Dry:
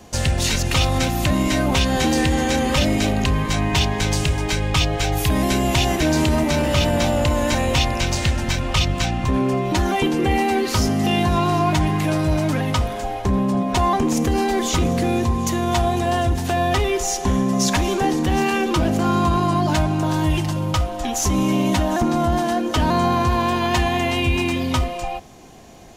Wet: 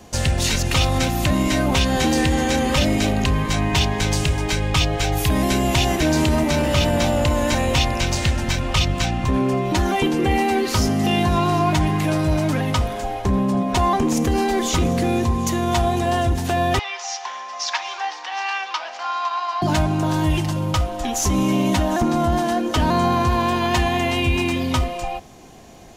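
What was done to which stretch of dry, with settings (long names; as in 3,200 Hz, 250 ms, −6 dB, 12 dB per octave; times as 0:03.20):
0:16.79–0:19.62: elliptic band-pass filter 830–5,400 Hz, stop band 80 dB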